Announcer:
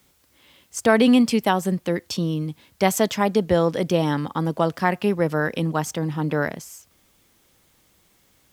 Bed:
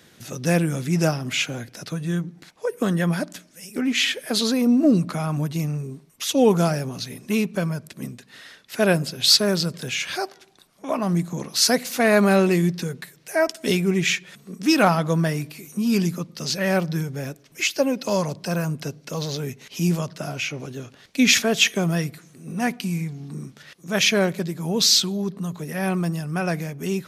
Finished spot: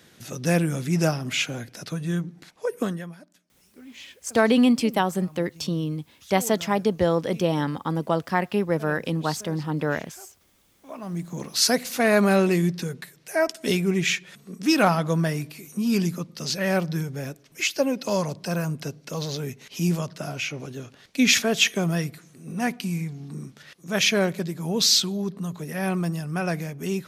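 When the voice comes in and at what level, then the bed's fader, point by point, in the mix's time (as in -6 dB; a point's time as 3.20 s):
3.50 s, -2.5 dB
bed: 2.81 s -1.5 dB
3.18 s -22.5 dB
10.59 s -22.5 dB
11.44 s -2 dB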